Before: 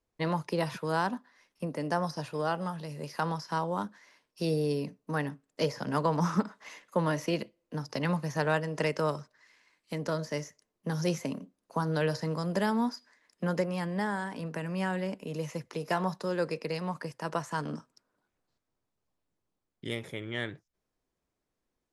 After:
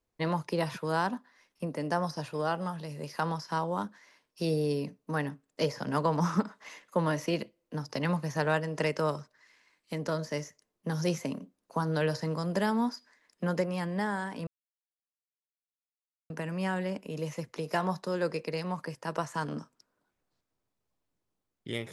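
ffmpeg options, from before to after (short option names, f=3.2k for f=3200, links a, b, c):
-filter_complex "[0:a]asplit=2[a][b];[a]atrim=end=14.47,asetpts=PTS-STARTPTS,afade=t=out:st=14.466:d=0.004:c=hsin,apad=pad_dur=1.83[c];[b]atrim=start=14.47,asetpts=PTS-STARTPTS,afade=t=in:d=0.004:c=hsin[d];[c][d]concat=n=2:v=0:a=1"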